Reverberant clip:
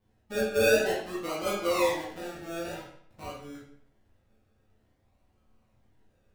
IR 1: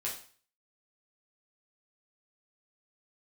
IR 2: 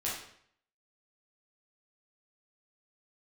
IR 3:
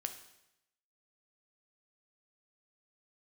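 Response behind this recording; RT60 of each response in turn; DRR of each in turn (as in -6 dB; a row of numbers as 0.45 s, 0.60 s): 2; 0.45 s, 0.65 s, 0.85 s; -5.5 dB, -7.0 dB, 6.5 dB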